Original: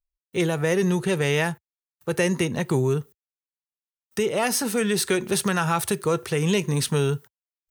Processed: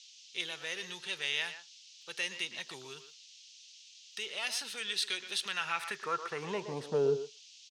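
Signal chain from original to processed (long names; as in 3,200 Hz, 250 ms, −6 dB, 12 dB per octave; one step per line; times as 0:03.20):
far-end echo of a speakerphone 120 ms, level −10 dB
band-pass filter sweep 3,500 Hz → 460 Hz, 0:05.43–0:07.14
noise in a band 2,700–6,500 Hz −56 dBFS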